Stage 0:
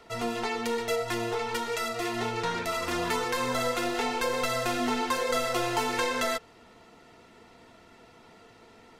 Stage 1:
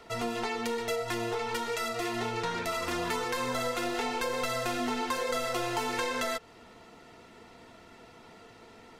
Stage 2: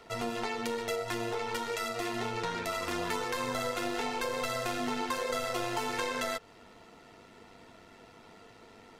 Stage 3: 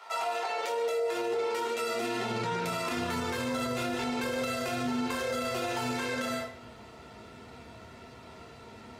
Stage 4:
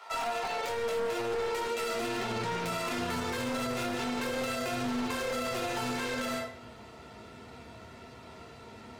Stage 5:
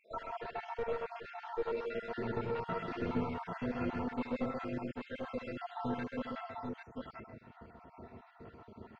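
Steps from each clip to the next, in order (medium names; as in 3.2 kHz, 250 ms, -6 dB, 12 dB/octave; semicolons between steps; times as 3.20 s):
compression 2:1, threshold -33 dBFS, peak gain reduction 6 dB; trim +1.5 dB
AM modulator 99 Hz, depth 25%
high-pass sweep 900 Hz -> 67 Hz, 0.02–3.71 s; reverberation RT60 0.60 s, pre-delay 5 ms, DRR -3 dB; peak limiter -23.5 dBFS, peak gain reduction 11 dB
one-sided wavefolder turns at -29 dBFS
random holes in the spectrogram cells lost 72%; tape spacing loss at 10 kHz 44 dB; on a send: multi-tap echo 77/131/783/794 ms -11/-4/-14/-4.5 dB; on the sum: trim +1 dB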